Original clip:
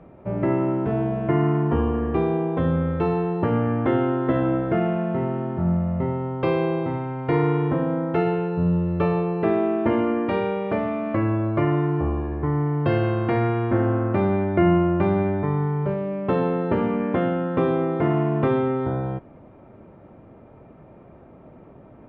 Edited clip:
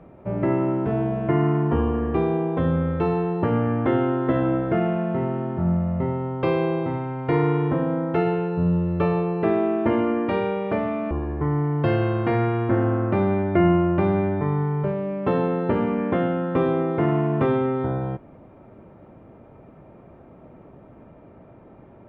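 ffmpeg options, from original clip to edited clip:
-filter_complex "[0:a]asplit=2[s0][s1];[s0]atrim=end=11.112[s2];[s1]atrim=start=12.128[s3];[s2][s3]acrossfade=d=0.004:c1=hsin:c2=hsin"

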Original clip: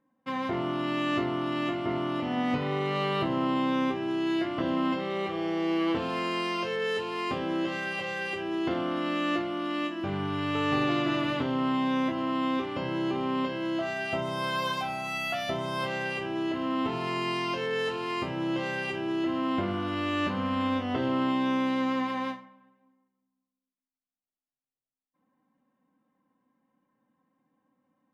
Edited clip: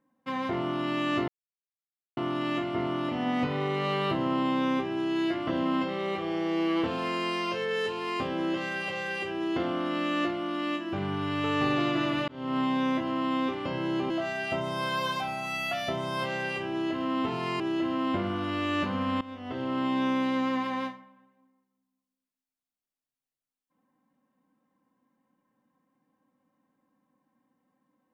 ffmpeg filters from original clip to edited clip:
-filter_complex "[0:a]asplit=6[s0][s1][s2][s3][s4][s5];[s0]atrim=end=1.28,asetpts=PTS-STARTPTS,afade=t=out:st=1.276:d=0.004:c=hsin,apad=pad_dur=0.89[s6];[s1]atrim=start=1.28:end=11.39,asetpts=PTS-STARTPTS,afade=t=in:d=0.004:c=hsin,afade=t=out:st=10.106:d=0.004:c=hsin[s7];[s2]atrim=start=11.39:end=13.212,asetpts=PTS-STARTPTS,afade=t=in:d=0.31[s8];[s3]atrim=start=13.708:end=17.212[s9];[s4]atrim=start=19.038:end=20.65,asetpts=PTS-STARTPTS,afade=t=out:st=1.608:d=0.004:c=hsin:silence=0.11885[s10];[s5]atrim=start=20.65,asetpts=PTS-STARTPTS,afade=t=in:d=0.78:silence=0.11885[s11];[s6][s7][s8]concat=n=3:v=0:a=1[s12];[s12][s9]acrossfade=d=0.004:c1=hsin:c2=hsin[s13];[s10][s11]concat=n=2:v=0:a=1[s14];[s13][s14]acrossfade=d=0.004:c1=hsin:c2=hsin"

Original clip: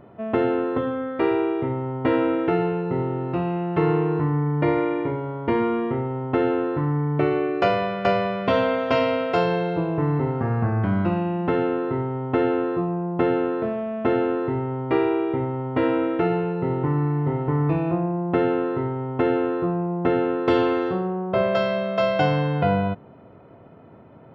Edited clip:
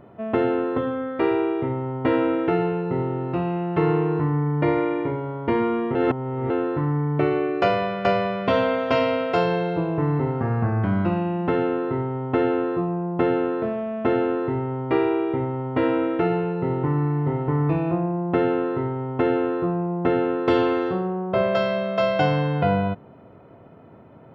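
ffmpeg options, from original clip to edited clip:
-filter_complex "[0:a]asplit=3[s0][s1][s2];[s0]atrim=end=5.952[s3];[s1]atrim=start=5.948:end=6.502,asetpts=PTS-STARTPTS,areverse[s4];[s2]atrim=start=6.498[s5];[s3][s4]acrossfade=d=0.004:c1=hsin:c2=hsin[s6];[s6][s5]acrossfade=d=0.004:c1=hsin:c2=hsin"

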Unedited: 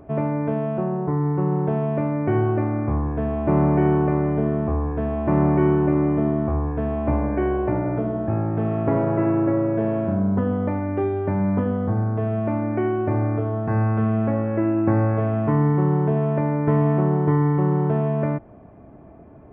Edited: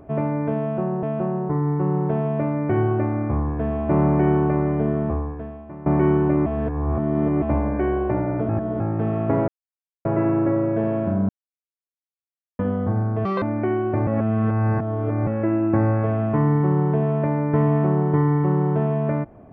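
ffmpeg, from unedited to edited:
-filter_complex "[0:a]asplit=14[s0][s1][s2][s3][s4][s5][s6][s7][s8][s9][s10][s11][s12][s13];[s0]atrim=end=1.032[s14];[s1]atrim=start=0.608:end=5.44,asetpts=PTS-STARTPTS,afade=t=out:st=4.052:d=0.78:c=qua:silence=0.105925[s15];[s2]atrim=start=5.44:end=6.042,asetpts=PTS-STARTPTS,afade=t=in:d=0.004:c=hsin:silence=0.105925[s16];[s3]atrim=start=6.038:end=7.002,asetpts=PTS-STARTPTS,areverse[s17];[s4]atrim=start=6.998:end=8.072[s18];[s5]atrim=start=8.068:end=8.382,asetpts=PTS-STARTPTS,areverse[s19];[s6]atrim=start=8.378:end=9.06,asetpts=PTS-STARTPTS,afade=t=out:st=0.678:d=0.004:c=hsin,apad=pad_dur=0.57[s20];[s7]atrim=start=9.06:end=10.3,asetpts=PTS-STARTPTS,afade=t=in:d=0.004:c=hsin,afade=t=out:st=1.236:d=0.004:c=hsin[s21];[s8]atrim=start=10.3:end=11.6,asetpts=PTS-STARTPTS,volume=0[s22];[s9]atrim=start=11.6:end=12.264,asetpts=PTS-STARTPTS,afade=t=in:d=0.004:c=hsin[s23];[s10]atrim=start=12.26:end=12.56,asetpts=PTS-STARTPTS,asetrate=77616,aresample=44100,atrim=end_sample=7517,asetpts=PTS-STARTPTS[s24];[s11]atrim=start=12.556:end=13.212[s25];[s12]atrim=start=13.208:end=14.412,asetpts=PTS-STARTPTS,areverse[s26];[s13]atrim=start=14.408[s27];[s15][s16]concat=n=2:v=0:a=1[s28];[s14][s28]acrossfade=d=0.004:c1=hsin:c2=hsin[s29];[s29][s17]acrossfade=d=0.004:c1=hsin:c2=hsin[s30];[s30][s18]acrossfade=d=0.004:c1=hsin:c2=hsin[s31];[s31][s19]acrossfade=d=0.004:c1=hsin:c2=hsin[s32];[s20][s21][s22][s23]concat=n=4:v=0:a=1[s33];[s32][s33]acrossfade=d=0.004:c1=hsin:c2=hsin[s34];[s34][s24]acrossfade=d=0.004:c1=hsin:c2=hsin[s35];[s35][s25]acrossfade=d=0.004:c1=hsin:c2=hsin[s36];[s36][s26]acrossfade=d=0.004:c1=hsin:c2=hsin[s37];[s37][s27]acrossfade=d=0.004:c1=hsin:c2=hsin"

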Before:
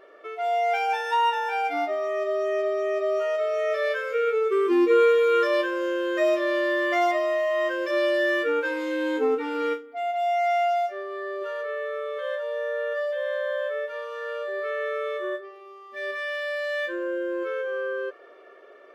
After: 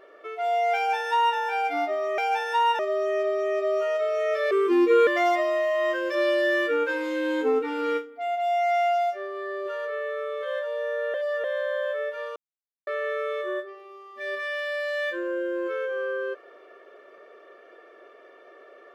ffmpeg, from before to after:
-filter_complex "[0:a]asplit=9[s0][s1][s2][s3][s4][s5][s6][s7][s8];[s0]atrim=end=2.182[s9];[s1]atrim=start=0.758:end=1.372[s10];[s2]atrim=start=2.178:end=3.902[s11];[s3]atrim=start=4.508:end=5.072[s12];[s4]atrim=start=6.828:end=12.902[s13];[s5]atrim=start=12.898:end=13.202,asetpts=PTS-STARTPTS,areverse[s14];[s6]atrim=start=13.198:end=14.12,asetpts=PTS-STARTPTS,afade=t=out:st=0.918:d=0.004:c=hsin[s15];[s7]atrim=start=14.12:end=14.63,asetpts=PTS-STARTPTS,volume=0[s16];[s8]atrim=start=14.63,asetpts=PTS-STARTPTS,afade=t=in:d=0.004:c=hsin[s17];[s9][s10]acrossfade=d=0.004:c1=hsin:c2=hsin[s18];[s18][s11]acrossfade=d=0.004:c1=hsin:c2=hsin[s19];[s19][s12]acrossfade=d=0.004:c1=hsin:c2=hsin[s20];[s20][s13]acrossfade=d=0.004:c1=hsin:c2=hsin[s21];[s21][s14]acrossfade=d=0.004:c1=hsin:c2=hsin[s22];[s15][s16][s17]concat=n=3:v=0:a=1[s23];[s22][s23]acrossfade=d=0.004:c1=hsin:c2=hsin"

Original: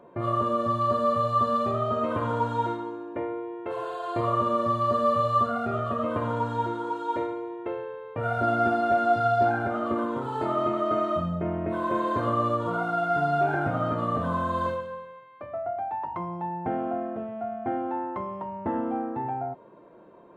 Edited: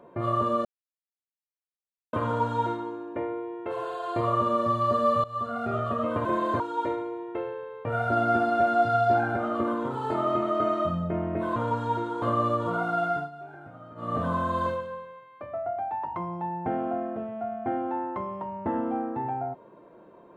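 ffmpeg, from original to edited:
-filter_complex "[0:a]asplit=10[s0][s1][s2][s3][s4][s5][s6][s7][s8][s9];[s0]atrim=end=0.65,asetpts=PTS-STARTPTS,afade=t=out:st=0.646:d=0.004:c=hsin[s10];[s1]atrim=start=0.65:end=2.13,asetpts=PTS-STARTPTS,volume=0[s11];[s2]atrim=start=2.13:end=5.24,asetpts=PTS-STARTPTS,afade=t=in:d=0.004:c=hsin,afade=t=out:st=3.106:d=0.004:c=hsin:silence=0.105925[s12];[s3]atrim=start=5.24:end=6.252,asetpts=PTS-STARTPTS,afade=t=in:d=0.49:silence=0.105925[s13];[s4]atrim=start=11.868:end=12.222[s14];[s5]atrim=start=6.908:end=11.872[s15];[s6]atrim=start=6.248:end=6.912[s16];[s7]atrim=start=12.218:end=13.3,asetpts=PTS-STARTPTS,afade=t=out:st=0.842:d=0.24:silence=0.112202[s17];[s8]atrim=start=13.3:end=13.95,asetpts=PTS-STARTPTS,volume=0.112[s18];[s9]atrim=start=13.95,asetpts=PTS-STARTPTS,afade=t=in:d=0.24:silence=0.112202[s19];[s10][s11][s12][s13]concat=n=4:v=0:a=1[s20];[s20][s14]acrossfade=d=0.004:c1=hsin:c2=hsin[s21];[s21][s15]acrossfade=d=0.004:c1=hsin:c2=hsin[s22];[s22][s16]acrossfade=d=0.004:c1=hsin:c2=hsin[s23];[s17][s18][s19]concat=n=3:v=0:a=1[s24];[s23][s24]acrossfade=d=0.004:c1=hsin:c2=hsin"

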